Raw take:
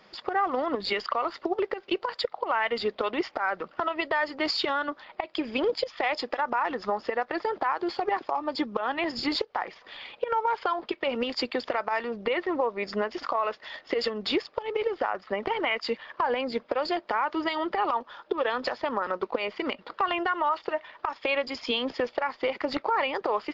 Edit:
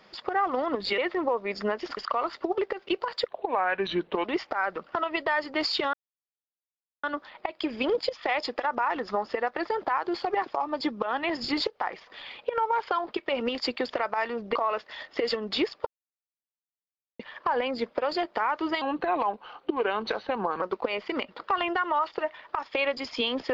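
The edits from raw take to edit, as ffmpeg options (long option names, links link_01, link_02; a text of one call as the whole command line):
ffmpeg -i in.wav -filter_complex "[0:a]asplit=11[link_01][link_02][link_03][link_04][link_05][link_06][link_07][link_08][link_09][link_10][link_11];[link_01]atrim=end=0.982[link_12];[link_02]atrim=start=12.298:end=13.292[link_13];[link_03]atrim=start=0.978:end=2.294[link_14];[link_04]atrim=start=2.29:end=3.09,asetpts=PTS-STARTPTS,asetrate=36603,aresample=44100,atrim=end_sample=42506,asetpts=PTS-STARTPTS[link_15];[link_05]atrim=start=3.086:end=4.78,asetpts=PTS-STARTPTS,afade=type=out:start_time=1.69:duration=0.004:curve=hsin,apad=pad_dur=1.1[link_16];[link_06]atrim=start=4.78:end=12.302,asetpts=PTS-STARTPTS,afade=type=in:duration=0.004:curve=hsin[link_17];[link_07]atrim=start=13.288:end=14.6,asetpts=PTS-STARTPTS,afade=type=out:start_time=1.308:duration=0.004:curve=hsin[link_18];[link_08]atrim=start=14.6:end=15.93,asetpts=PTS-STARTPTS,volume=0[link_19];[link_09]atrim=start=15.93:end=17.554,asetpts=PTS-STARTPTS,afade=type=in:duration=0.004:curve=hsin[link_20];[link_10]atrim=start=17.55:end=19.12,asetpts=PTS-STARTPTS,asetrate=38367,aresample=44100[link_21];[link_11]atrim=start=19.116[link_22];[link_12][link_13]acrossfade=duration=0.004:curve1=hsin:curve2=hsin[link_23];[link_23][link_14]acrossfade=duration=0.004:curve1=hsin:curve2=hsin[link_24];[link_24][link_15]acrossfade=duration=0.004:curve1=hsin:curve2=hsin[link_25];[link_16][link_17]concat=n=2:v=0:a=1[link_26];[link_25][link_26]acrossfade=duration=0.004:curve1=hsin:curve2=hsin[link_27];[link_18][link_19][link_20]concat=n=3:v=0:a=1[link_28];[link_27][link_28]acrossfade=duration=0.004:curve1=hsin:curve2=hsin[link_29];[link_29][link_21]acrossfade=duration=0.004:curve1=hsin:curve2=hsin[link_30];[link_30][link_22]acrossfade=duration=0.004:curve1=hsin:curve2=hsin" out.wav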